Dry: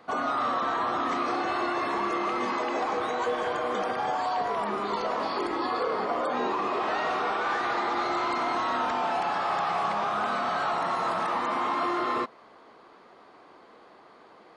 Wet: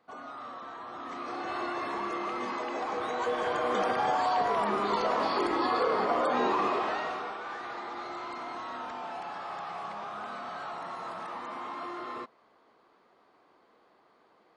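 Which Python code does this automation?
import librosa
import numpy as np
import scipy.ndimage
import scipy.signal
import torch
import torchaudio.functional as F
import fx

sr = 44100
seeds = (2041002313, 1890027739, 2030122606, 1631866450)

y = fx.gain(x, sr, db=fx.line((0.84, -15.0), (1.57, -5.5), (2.78, -5.5), (3.82, 1.0), (6.65, 1.0), (7.39, -11.0)))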